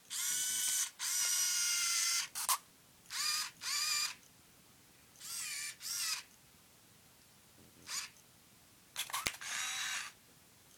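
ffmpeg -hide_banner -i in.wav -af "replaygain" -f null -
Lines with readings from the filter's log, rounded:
track_gain = +17.6 dB
track_peak = 0.134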